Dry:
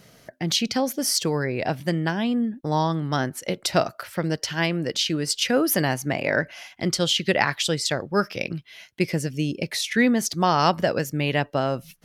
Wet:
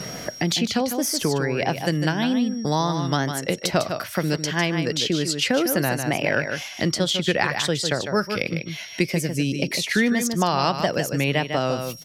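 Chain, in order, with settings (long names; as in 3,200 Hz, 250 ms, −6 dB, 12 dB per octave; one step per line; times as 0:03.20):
tape wow and flutter 97 cents
steady tone 5,600 Hz −49 dBFS
single-tap delay 151 ms −8.5 dB
multiband upward and downward compressor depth 70%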